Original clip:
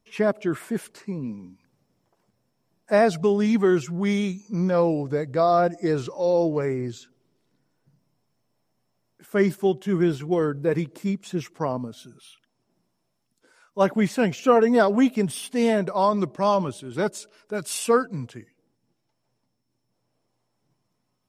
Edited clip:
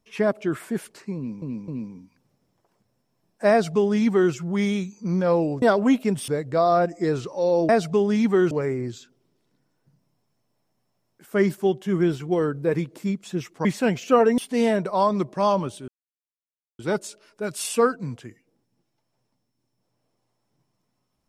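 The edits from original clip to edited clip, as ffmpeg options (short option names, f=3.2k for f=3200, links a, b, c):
-filter_complex "[0:a]asplit=10[a][b][c][d][e][f][g][h][i][j];[a]atrim=end=1.422[k];[b]atrim=start=1.158:end=1.422[l];[c]atrim=start=1.158:end=5.102[m];[d]atrim=start=14.738:end=15.402[n];[e]atrim=start=5.098:end=6.512[o];[f]atrim=start=2.988:end=3.812[p];[g]atrim=start=6.508:end=11.652[q];[h]atrim=start=14.008:end=14.742[r];[i]atrim=start=15.398:end=16.9,asetpts=PTS-STARTPTS,afade=t=out:st=1.498:d=0.004:c=hsin,apad=pad_dur=0.91[s];[j]atrim=start=16.9,asetpts=PTS-STARTPTS,afade=t=in:d=0.004:c=hsin[t];[k][l]acrossfade=d=0.004:c1=hsin:c2=hsin[u];[u][m]acrossfade=d=0.004:c1=hsin:c2=hsin[v];[v][n]acrossfade=d=0.004:c1=hsin:c2=hsin[w];[w][o]acrossfade=d=0.004:c1=hsin:c2=hsin[x];[x][p]acrossfade=d=0.004:c1=hsin:c2=hsin[y];[y][q]acrossfade=d=0.004:c1=hsin:c2=hsin[z];[z][r]acrossfade=d=0.004:c1=hsin:c2=hsin[aa];[s][t]concat=n=2:v=0:a=1[ab];[aa][ab]acrossfade=d=0.004:c1=hsin:c2=hsin"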